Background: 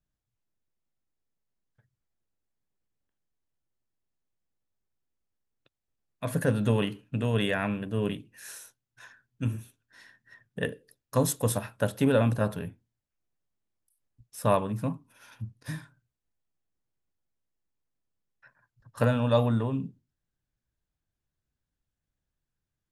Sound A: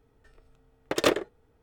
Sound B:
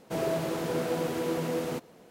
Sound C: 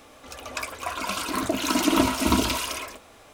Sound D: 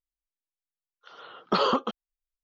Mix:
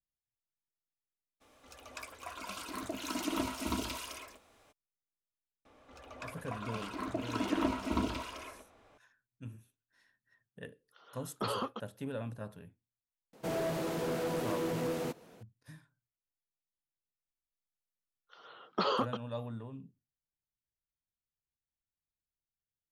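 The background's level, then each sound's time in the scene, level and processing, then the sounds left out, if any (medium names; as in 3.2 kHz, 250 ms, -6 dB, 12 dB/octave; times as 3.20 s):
background -16.5 dB
1.40 s: add C -14 dB, fades 0.02 s
5.65 s: add C -10.5 dB + low-pass 1.8 kHz 6 dB/octave
9.89 s: add D -12 dB
13.33 s: add B -3 dB + hard clipper -27 dBFS
17.26 s: add D -7.5 dB
not used: A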